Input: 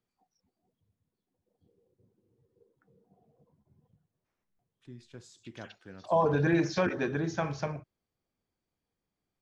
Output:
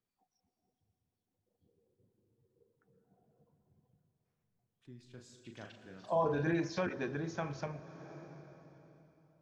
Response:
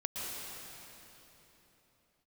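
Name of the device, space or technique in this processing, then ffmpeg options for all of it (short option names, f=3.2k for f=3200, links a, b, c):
ducked reverb: -filter_complex "[0:a]asplit=3[a][b][c];[1:a]atrim=start_sample=2205[d];[b][d]afir=irnorm=-1:irlink=0[e];[c]apad=whole_len=414985[f];[e][f]sidechaincompress=threshold=-40dB:ratio=8:attack=47:release=516,volume=-8.5dB[g];[a][g]amix=inputs=2:normalize=0,asettb=1/sr,asplit=3[h][i][j];[h]atrim=end=5.024[k];[i]atrim=start=5.02:end=6.52,asetpts=PTS-STARTPTS,afade=t=in:d=0.004:c=qsin,afade=t=out:st=1.496:d=0.004:c=qsin,asplit=2[l][m];[m]adelay=38,volume=-6.5dB[n];[l][n]amix=inputs=2:normalize=0,atrim=end_sample=66150[o];[j]atrim=start=6.516[p];[k][o]acrossfade=d=0.004:c1=hsin:c2=qsin[q];[q][p]acrossfade=d=0.004:c1=qsin:c2=hsin,volume=-7.5dB"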